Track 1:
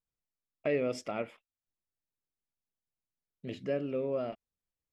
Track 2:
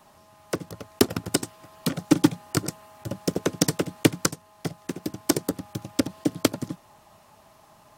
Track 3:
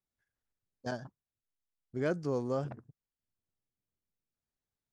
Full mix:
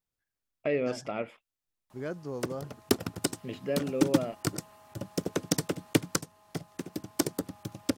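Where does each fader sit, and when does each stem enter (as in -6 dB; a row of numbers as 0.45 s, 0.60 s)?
+1.5 dB, -6.0 dB, -4.5 dB; 0.00 s, 1.90 s, 0.00 s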